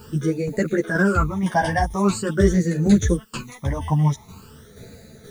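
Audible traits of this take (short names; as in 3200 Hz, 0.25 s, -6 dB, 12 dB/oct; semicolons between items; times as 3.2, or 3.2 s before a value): a quantiser's noise floor 10-bit, dither triangular; phasing stages 12, 0.45 Hz, lowest notch 420–1000 Hz; tremolo saw down 2.1 Hz, depth 50%; a shimmering, thickened sound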